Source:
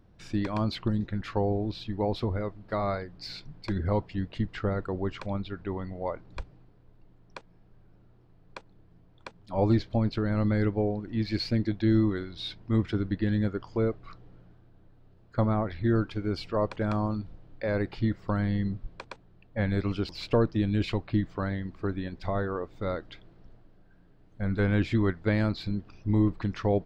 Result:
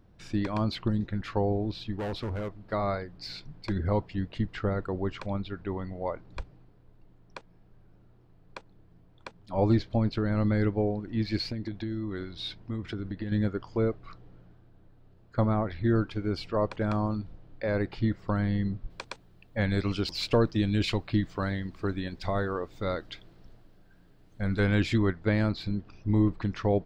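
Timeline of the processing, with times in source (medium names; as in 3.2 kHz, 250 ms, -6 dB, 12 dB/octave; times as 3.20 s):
1.94–2.65 s: hard clipper -30 dBFS
11.41–13.32 s: compression 12:1, threshold -29 dBFS
18.90–24.98 s: treble shelf 3.2 kHz +11 dB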